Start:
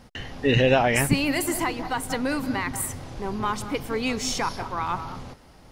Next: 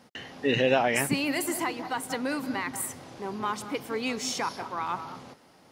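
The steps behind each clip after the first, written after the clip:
high-pass filter 190 Hz 12 dB per octave
level −3.5 dB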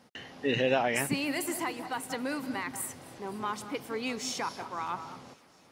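delay with a high-pass on its return 258 ms, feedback 73%, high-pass 1,800 Hz, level −21.5 dB
level −3.5 dB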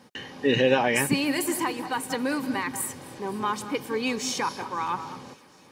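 notch comb filter 680 Hz
level +7 dB

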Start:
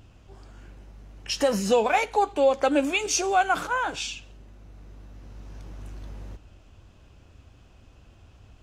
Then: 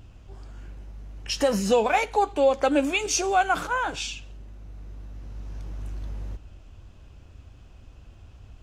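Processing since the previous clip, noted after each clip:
low-shelf EQ 90 Hz +8 dB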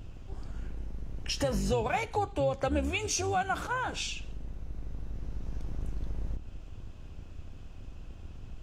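sub-octave generator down 2 octaves, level +3 dB
downward compressor 2 to 1, threshold −33 dBFS, peak gain reduction 10.5 dB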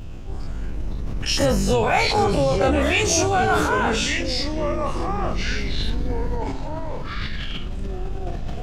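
every bin's largest magnitude spread in time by 60 ms
delay with pitch and tempo change per echo 406 ms, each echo −4 semitones, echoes 3, each echo −6 dB
level that may fall only so fast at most 25 dB per second
level +6 dB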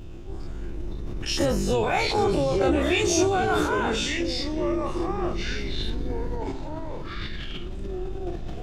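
hollow resonant body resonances 350/3,600 Hz, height 11 dB, ringing for 50 ms
level −5.5 dB

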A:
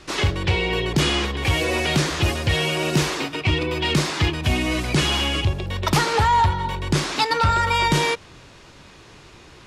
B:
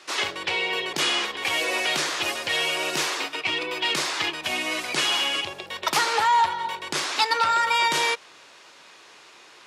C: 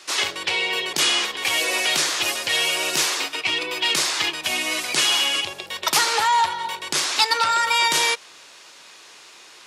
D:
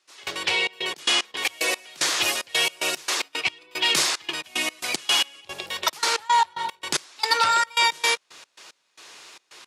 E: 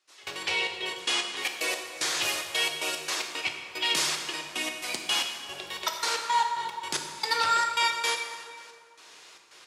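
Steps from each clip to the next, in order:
Bessel high-pass filter 690 Hz, order 2
high-shelf EQ 3,800 Hz +10 dB
gate pattern "..xxx.x.x.x.x" 112 BPM −24 dB
dense smooth reverb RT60 2.1 s, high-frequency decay 0.65×, DRR 3 dB; level −6.5 dB

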